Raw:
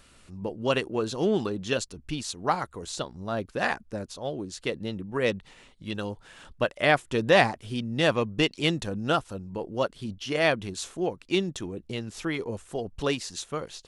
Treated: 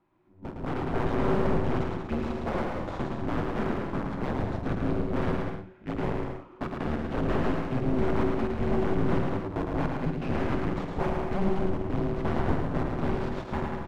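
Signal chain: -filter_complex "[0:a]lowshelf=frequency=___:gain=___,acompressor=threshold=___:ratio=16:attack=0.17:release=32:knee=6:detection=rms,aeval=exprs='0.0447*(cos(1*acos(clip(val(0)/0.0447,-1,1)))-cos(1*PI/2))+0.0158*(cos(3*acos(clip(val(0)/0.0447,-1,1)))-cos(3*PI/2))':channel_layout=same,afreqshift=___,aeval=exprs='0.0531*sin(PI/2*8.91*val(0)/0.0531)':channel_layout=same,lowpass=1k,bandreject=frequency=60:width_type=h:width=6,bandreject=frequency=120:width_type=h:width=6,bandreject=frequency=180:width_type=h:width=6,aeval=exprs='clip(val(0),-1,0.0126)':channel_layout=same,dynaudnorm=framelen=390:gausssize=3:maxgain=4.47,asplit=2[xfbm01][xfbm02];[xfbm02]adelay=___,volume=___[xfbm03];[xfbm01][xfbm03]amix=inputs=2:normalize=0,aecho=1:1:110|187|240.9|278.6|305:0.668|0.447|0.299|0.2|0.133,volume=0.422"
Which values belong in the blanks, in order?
430, -5.5, 0.0316, -380, 48, 0.266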